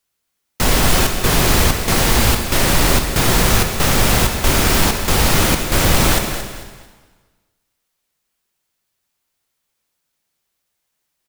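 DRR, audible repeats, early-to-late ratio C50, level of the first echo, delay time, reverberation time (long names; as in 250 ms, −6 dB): 3.5 dB, 3, 5.0 dB, −10.0 dB, 223 ms, 1.5 s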